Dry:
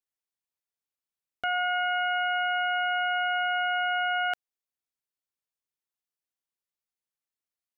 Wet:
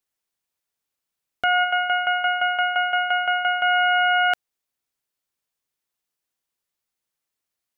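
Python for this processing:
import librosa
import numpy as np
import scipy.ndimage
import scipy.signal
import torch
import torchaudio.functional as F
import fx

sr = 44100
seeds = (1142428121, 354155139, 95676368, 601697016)

y = fx.tremolo_shape(x, sr, shape='saw_down', hz=5.8, depth_pct=70, at=(1.63, 3.63), fade=0.02)
y = y * 10.0 ** (8.5 / 20.0)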